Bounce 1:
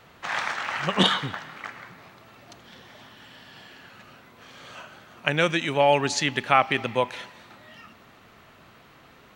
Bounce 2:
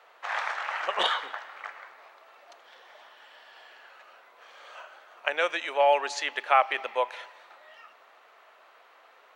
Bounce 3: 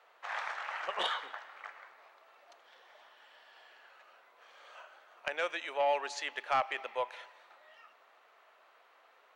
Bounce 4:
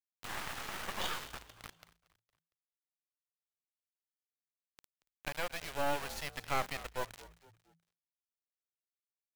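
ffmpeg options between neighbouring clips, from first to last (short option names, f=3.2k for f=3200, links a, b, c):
-af "highpass=f=530:w=0.5412,highpass=f=530:w=1.3066,highshelf=f=2.8k:g=-10.5"
-af "asoftclip=type=tanh:threshold=-13dB,volume=-7dB"
-filter_complex "[0:a]acrusher=bits=4:dc=4:mix=0:aa=0.000001,asplit=4[a][b][c][d];[b]adelay=230,afreqshift=-56,volume=-18.5dB[e];[c]adelay=460,afreqshift=-112,volume=-26dB[f];[d]adelay=690,afreqshift=-168,volume=-33.6dB[g];[a][e][f][g]amix=inputs=4:normalize=0"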